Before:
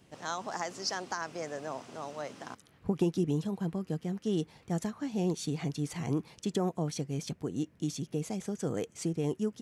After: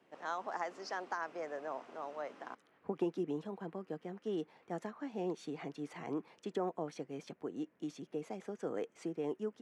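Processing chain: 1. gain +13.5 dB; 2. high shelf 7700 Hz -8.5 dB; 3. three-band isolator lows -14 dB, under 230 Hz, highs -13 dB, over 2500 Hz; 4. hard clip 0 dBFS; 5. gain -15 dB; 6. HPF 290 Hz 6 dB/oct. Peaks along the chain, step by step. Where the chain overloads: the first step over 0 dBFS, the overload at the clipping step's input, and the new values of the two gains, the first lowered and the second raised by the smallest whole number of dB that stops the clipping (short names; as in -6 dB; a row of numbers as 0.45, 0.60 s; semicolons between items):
-3.0, -3.0, -5.5, -5.5, -20.5, -23.5 dBFS; no overload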